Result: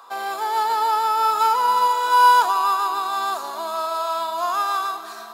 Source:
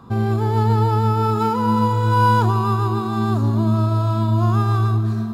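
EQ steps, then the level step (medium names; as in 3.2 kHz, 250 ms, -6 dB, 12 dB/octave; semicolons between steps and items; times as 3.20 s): high-pass 630 Hz 24 dB/octave; treble shelf 4.7 kHz +7 dB; +4.0 dB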